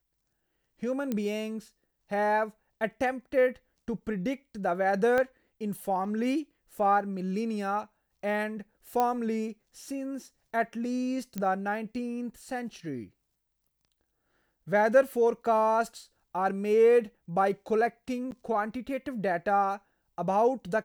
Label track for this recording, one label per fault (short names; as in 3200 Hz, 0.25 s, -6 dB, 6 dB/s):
1.120000	1.120000	pop -18 dBFS
5.180000	5.180000	pop -16 dBFS
9.000000	9.000000	pop -14 dBFS
11.380000	11.380000	pop -19 dBFS
18.310000	18.320000	gap 9.8 ms